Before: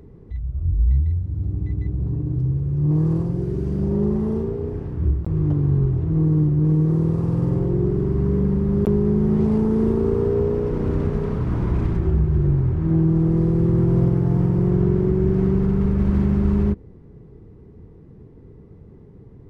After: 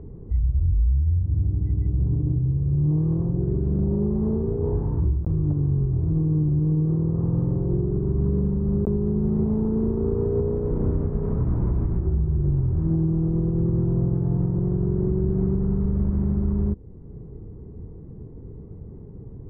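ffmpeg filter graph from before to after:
ffmpeg -i in.wav -filter_complex "[0:a]asettb=1/sr,asplit=3[link_01][link_02][link_03];[link_01]atrim=end=4.624[link_04];[link_02]atrim=start=4.62:end=5.18,asetpts=PTS-STARTPTS,afade=type=in:duration=0.004:curve=qsin,afade=type=out:start_time=0.556:duration=0.004:curve=qsin,equalizer=frequency=930:width_type=o:width=0.37:gain=10,asplit=2[link_05][link_06];[link_06]adelay=19,volume=-7dB[link_07];[link_05][link_07]amix=inputs=2:normalize=0,atrim=end_sample=24696[link_08];[link_03]atrim=start=5.176[link_09];[link_04][link_08]acrossfade=duration=0.004:curve1=hsin:curve2=qsin[link_10];[link_10][link_09]acrossfade=duration=0.004:curve1=qsin:curve2=hsin,lowpass=1000,lowshelf=frequency=110:gain=6.5,alimiter=limit=-16.5dB:level=0:latency=1:release=438,volume=2dB" out.wav

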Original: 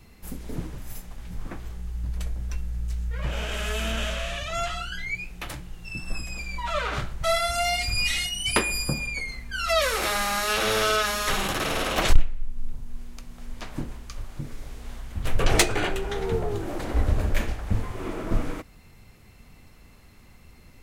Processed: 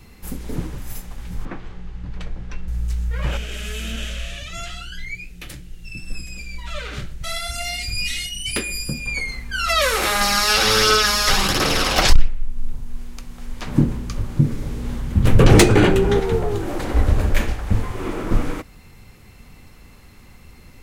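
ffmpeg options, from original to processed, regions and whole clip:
ffmpeg -i in.wav -filter_complex "[0:a]asettb=1/sr,asplit=3[link_01][link_02][link_03];[link_01]atrim=end=1.454[link_04];[link_02]atrim=start=1.45:end=2.68,asetpts=PTS-STARTPTS,afade=type=in:duration=0.004:curve=qsin,afade=type=out:start_time=1.226:duration=0.004:curve=qsin,lowpass=3600,equalizer=frequency=66:width=2:gain=-13.5[link_05];[link_03]atrim=start=2.676[link_06];[link_04][link_05]acrossfade=duration=0.004:curve1=hsin:curve2=qsin[link_07];[link_07][link_06]acrossfade=duration=0.004:curve1=qsin:curve2=hsin,asettb=1/sr,asplit=3[link_08][link_09][link_10];[link_08]atrim=end=3.374[link_11];[link_09]atrim=start=3.37:end=9.06,asetpts=PTS-STARTPTS,afade=type=in:duration=0.004:curve=qsin,afade=type=out:start_time=5.686:duration=0.004:curve=qsin,equalizer=frequency=960:width=1.2:gain=-14,flanger=delay=0.3:depth=6.5:regen=79:speed=1.2:shape=triangular,asoftclip=type=hard:threshold=-21dB[link_12];[link_10]atrim=start=9.056[link_13];[link_11][link_12]acrossfade=duration=0.004:curve1=hsin:curve2=qsin[link_14];[link_14][link_13]acrossfade=duration=0.004:curve1=qsin:curve2=hsin,asettb=1/sr,asplit=3[link_15][link_16][link_17];[link_15]atrim=end=10.214[link_18];[link_16]atrim=start=10.21:end=12.28,asetpts=PTS-STARTPTS,afade=type=in:duration=0.004:curve=qsin,afade=type=out:start_time=2.066:duration=0.004:curve=qsin,equalizer=frequency=5000:width_type=o:width=0.46:gain=10.5,aphaser=in_gain=1:out_gain=1:delay=1.5:decay=0.32:speed=1.4:type=triangular[link_19];[link_17]atrim=start=12.276[link_20];[link_18][link_19]acrossfade=duration=0.004:curve1=hsin:curve2=qsin[link_21];[link_21][link_20]acrossfade=duration=0.004:curve1=qsin:curve2=hsin,asettb=1/sr,asplit=3[link_22][link_23][link_24];[link_22]atrim=end=13.674[link_25];[link_23]atrim=start=13.67:end=16.2,asetpts=PTS-STARTPTS,afade=type=in:duration=0.004:curve=qsin,afade=type=out:start_time=2.526:duration=0.004:curve=qsin,equalizer=frequency=170:width=0.42:gain=14,bandreject=frequency=730:width=18,volume=6.5dB,asoftclip=hard,volume=-6.5dB[link_26];[link_24]atrim=start=16.196[link_27];[link_25][link_26]acrossfade=duration=0.004:curve1=hsin:curve2=qsin[link_28];[link_28][link_27]acrossfade=duration=0.004:curve1=qsin:curve2=hsin,bandreject=frequency=650:width=12,alimiter=level_in=7dB:limit=-1dB:release=50:level=0:latency=1,volume=-1dB" out.wav

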